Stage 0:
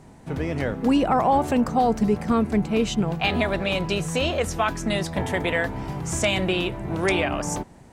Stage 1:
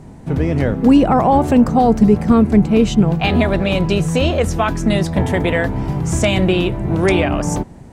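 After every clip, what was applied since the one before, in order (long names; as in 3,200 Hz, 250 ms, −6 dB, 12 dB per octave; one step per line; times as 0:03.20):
low-shelf EQ 480 Hz +9 dB
level +3 dB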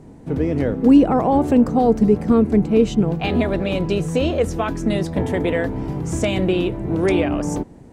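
hollow resonant body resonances 300/450 Hz, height 7 dB, ringing for 25 ms
level −7 dB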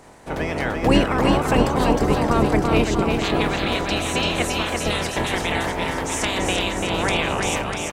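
ceiling on every frequency bin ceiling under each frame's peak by 25 dB
on a send: bouncing-ball delay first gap 340 ms, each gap 0.9×, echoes 5
on the sum: level −4.5 dB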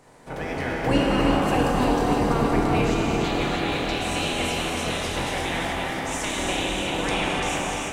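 reverb whose tail is shaped and stops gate 320 ms flat, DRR −2.5 dB
level −7.5 dB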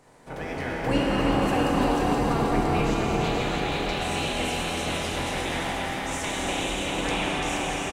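single-tap delay 477 ms −5.5 dB
level −3 dB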